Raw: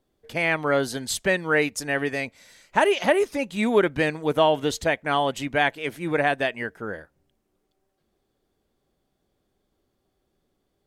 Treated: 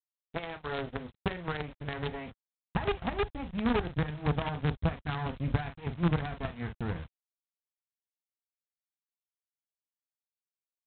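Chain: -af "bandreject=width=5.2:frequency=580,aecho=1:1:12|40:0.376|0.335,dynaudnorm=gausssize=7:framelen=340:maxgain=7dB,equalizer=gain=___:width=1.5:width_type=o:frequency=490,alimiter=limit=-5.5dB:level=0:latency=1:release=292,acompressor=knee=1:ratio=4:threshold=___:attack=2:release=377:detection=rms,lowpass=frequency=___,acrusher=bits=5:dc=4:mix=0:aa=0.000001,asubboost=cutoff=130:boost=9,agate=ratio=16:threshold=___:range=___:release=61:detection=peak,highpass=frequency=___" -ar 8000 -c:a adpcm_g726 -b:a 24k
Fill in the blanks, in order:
2.5, -25dB, 1100, -39dB, -52dB, 50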